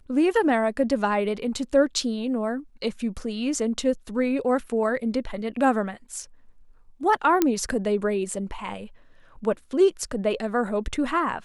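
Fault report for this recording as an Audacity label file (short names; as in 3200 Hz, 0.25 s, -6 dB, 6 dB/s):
7.420000	7.420000	pop -6 dBFS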